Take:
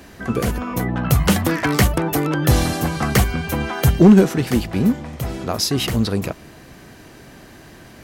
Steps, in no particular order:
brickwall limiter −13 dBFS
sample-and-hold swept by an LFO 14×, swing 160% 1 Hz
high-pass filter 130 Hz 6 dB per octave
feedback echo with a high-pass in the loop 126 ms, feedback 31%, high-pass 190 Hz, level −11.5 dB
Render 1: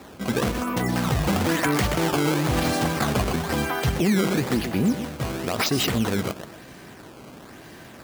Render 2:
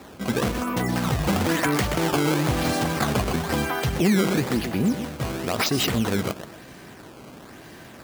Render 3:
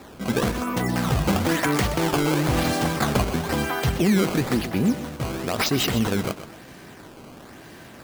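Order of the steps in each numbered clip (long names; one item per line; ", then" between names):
feedback echo with a high-pass in the loop, then sample-and-hold swept by an LFO, then high-pass filter, then brickwall limiter
feedback echo with a high-pass in the loop, then sample-and-hold swept by an LFO, then brickwall limiter, then high-pass filter
high-pass filter, then sample-and-hold swept by an LFO, then brickwall limiter, then feedback echo with a high-pass in the loop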